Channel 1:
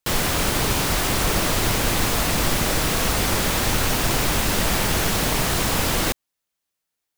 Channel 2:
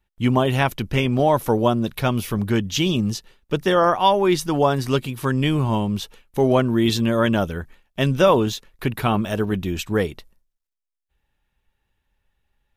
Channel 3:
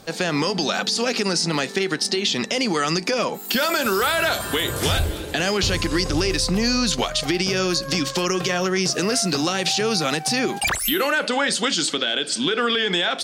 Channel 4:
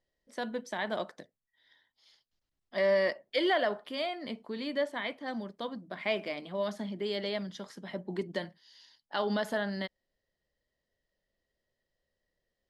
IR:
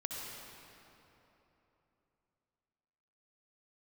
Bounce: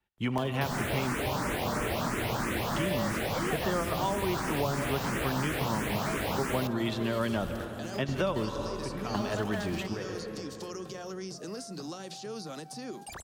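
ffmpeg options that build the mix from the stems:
-filter_complex "[0:a]highpass=f=180:p=1,asplit=2[a][b];[b]afreqshift=3[c];[a][c]amix=inputs=2:normalize=1,adelay=550,volume=-0.5dB[d];[1:a]highpass=f=170:p=1,highshelf=f=5.6k:g=-7.5,volume=-5.5dB,asplit=2[e][f];[f]volume=-8.5dB[g];[2:a]equalizer=f=2.3k:t=o:w=1.3:g=-11,bandreject=f=60:t=h:w=6,bandreject=f=120:t=h:w=6,bandreject=f=180:t=h:w=6,adelay=2450,volume=-16.5dB,asplit=2[h][i];[i]volume=-23.5dB[j];[3:a]aeval=exprs='val(0)*gte(abs(val(0)),0.0141)':c=same,volume=-3dB,asplit=2[k][l];[l]apad=whole_len=562787[m];[e][m]sidechaingate=range=-33dB:threshold=-46dB:ratio=16:detection=peak[n];[4:a]atrim=start_sample=2205[o];[g][j]amix=inputs=2:normalize=0[p];[p][o]afir=irnorm=-1:irlink=0[q];[d][n][h][k][q]amix=inputs=5:normalize=0,acrossover=split=220|540|2400[r][s][t][u];[r]acompressor=threshold=-32dB:ratio=4[v];[s]acompressor=threshold=-38dB:ratio=4[w];[t]acompressor=threshold=-33dB:ratio=4[x];[u]acompressor=threshold=-44dB:ratio=4[y];[v][w][x][y]amix=inputs=4:normalize=0"

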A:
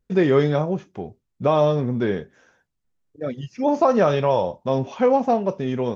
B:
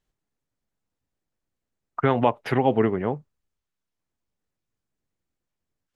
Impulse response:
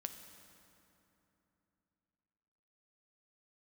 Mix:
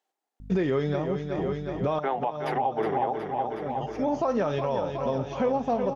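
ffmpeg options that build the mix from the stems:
-filter_complex "[0:a]aeval=exprs='val(0)+0.00794*(sin(2*PI*50*n/s)+sin(2*PI*2*50*n/s)/2+sin(2*PI*3*50*n/s)/3+sin(2*PI*4*50*n/s)/4+sin(2*PI*5*50*n/s)/5)':c=same,adelay=400,volume=0.5dB,asplit=2[a][b];[b]volume=-9.5dB[c];[1:a]highpass=f=310:w=0.5412,highpass=f=310:w=1.3066,equalizer=f=780:w=3.4:g=13,volume=-0.5dB,asplit=3[d][e][f];[e]volume=-9dB[g];[f]apad=whole_len=280370[h];[a][h]sidechaincompress=threshold=-36dB:ratio=5:attack=16:release=854[i];[c][g]amix=inputs=2:normalize=0,aecho=0:1:367|734|1101|1468|1835|2202|2569|2936|3303:1|0.58|0.336|0.195|0.113|0.0656|0.0381|0.0221|0.0128[j];[i][d][j]amix=inputs=3:normalize=0,alimiter=limit=-17dB:level=0:latency=1:release=438"

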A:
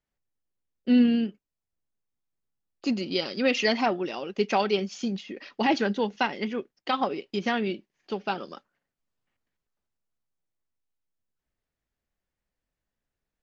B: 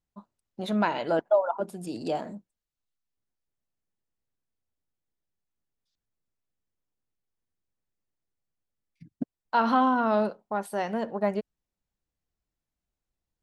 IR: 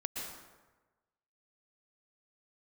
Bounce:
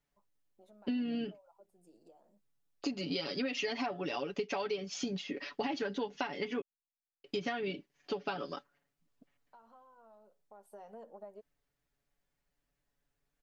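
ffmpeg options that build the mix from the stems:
-filter_complex "[0:a]aecho=1:1:7:0.8,acompressor=threshold=-25dB:ratio=6,volume=0dB,asplit=3[a][b][c];[a]atrim=end=6.62,asetpts=PTS-STARTPTS,afade=t=out:st=6.616:d=0.004:c=hsin[d];[b]atrim=start=6.62:end=7.24,asetpts=PTS-STARTPTS,volume=0[e];[c]atrim=start=7.24,asetpts=PTS-STARTPTS,afade=t=in:d=0.004:c=hsin[f];[d][e][f]concat=n=3:v=0:a=1[g];[1:a]equalizer=f=125:t=o:w=1:g=-11,equalizer=f=250:t=o:w=1:g=-6,equalizer=f=500:t=o:w=1:g=4,equalizer=f=2k:t=o:w=1:g=-10,equalizer=f=4k:t=o:w=1:g=-9,acompressor=threshold=-35dB:ratio=6,flanger=delay=1.7:depth=4.4:regen=-44:speed=0.25:shape=triangular,volume=-8.5dB,afade=t=in:st=10.46:d=0.37:silence=0.298538[h];[g][h]amix=inputs=2:normalize=0,acompressor=threshold=-35dB:ratio=2.5"

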